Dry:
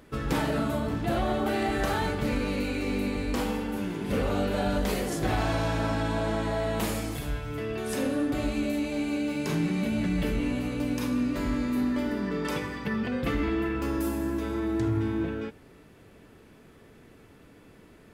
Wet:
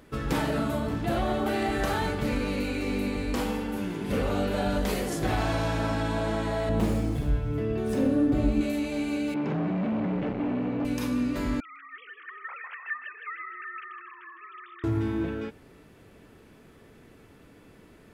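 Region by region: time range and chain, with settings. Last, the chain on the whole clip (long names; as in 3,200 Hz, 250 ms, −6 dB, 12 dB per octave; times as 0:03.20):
0:06.69–0:08.61: running median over 3 samples + tilt shelving filter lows +7 dB, about 690 Hz
0:09.34–0:10.85: low-shelf EQ 380 Hz +8 dB + hard clipping −24.5 dBFS + band-pass filter 150–2,000 Hz
0:11.60–0:14.84: three sine waves on the formant tracks + high-pass filter 1,000 Hz 24 dB per octave + repeating echo 157 ms, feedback 53%, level −9 dB
whole clip: no processing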